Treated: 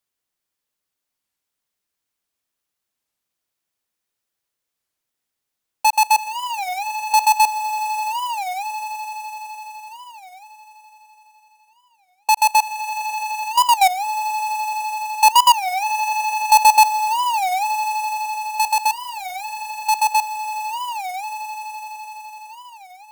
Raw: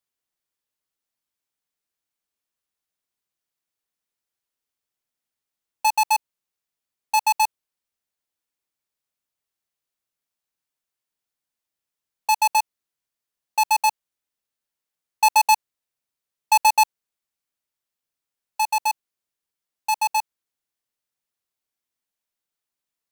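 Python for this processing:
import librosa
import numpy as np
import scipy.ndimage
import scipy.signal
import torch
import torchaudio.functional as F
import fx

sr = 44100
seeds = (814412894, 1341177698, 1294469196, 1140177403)

y = fx.echo_swell(x, sr, ms=84, loudest=8, wet_db=-16.5)
y = fx.record_warp(y, sr, rpm=33.33, depth_cents=250.0)
y = F.gain(torch.from_numpy(y), 4.0).numpy()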